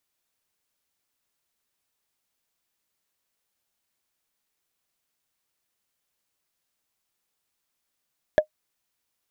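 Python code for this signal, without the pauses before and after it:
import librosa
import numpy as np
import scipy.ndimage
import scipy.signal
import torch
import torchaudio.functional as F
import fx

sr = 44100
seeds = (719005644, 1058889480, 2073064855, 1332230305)

y = fx.strike_wood(sr, length_s=0.45, level_db=-8.0, body='bar', hz=614.0, decay_s=0.09, tilt_db=9.5, modes=5)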